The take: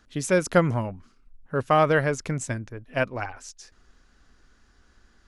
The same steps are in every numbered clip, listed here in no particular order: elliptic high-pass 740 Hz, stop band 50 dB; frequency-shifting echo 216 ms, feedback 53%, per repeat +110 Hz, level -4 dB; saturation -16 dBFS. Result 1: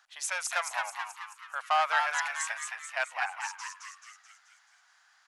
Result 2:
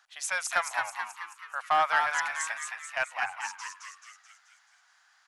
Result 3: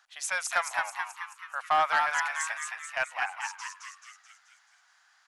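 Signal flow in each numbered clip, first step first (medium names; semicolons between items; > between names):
saturation > elliptic high-pass > frequency-shifting echo; elliptic high-pass > saturation > frequency-shifting echo; elliptic high-pass > frequency-shifting echo > saturation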